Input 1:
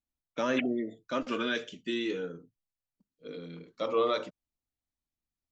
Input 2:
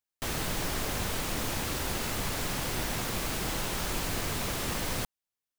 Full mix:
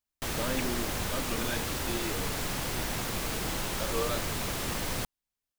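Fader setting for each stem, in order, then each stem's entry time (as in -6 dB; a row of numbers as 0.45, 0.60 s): -5.5, -0.5 dB; 0.00, 0.00 s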